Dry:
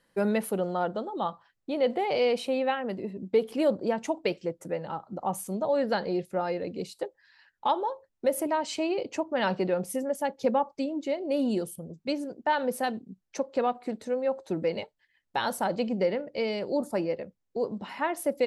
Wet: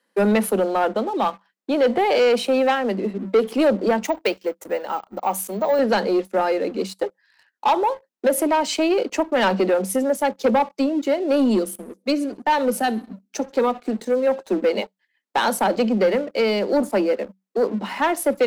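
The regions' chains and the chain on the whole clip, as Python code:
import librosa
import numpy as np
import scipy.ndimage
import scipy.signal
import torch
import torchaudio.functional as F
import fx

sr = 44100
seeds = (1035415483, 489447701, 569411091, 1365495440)

y = fx.chain(x, sr, fx.highpass(hz=460.0, slope=6),
    fx.resample_bad(factor=2, down='none', up='hold'), at=(4.05, 5.79))
y = fx.chain(y, sr, fx.echo_feedback(ms=67, feedback_pct=54, wet_db=-23.0),
    fx.notch_cascade(direction='rising', hz=1.9), at=(11.59, 14.27))
y = scipy.signal.sosfilt(scipy.signal.cheby1(10, 1.0, 190.0, 'highpass', fs=sr, output='sos'), y)
y = fx.leveller(y, sr, passes=2)
y = y * 10.0 ** (3.5 / 20.0)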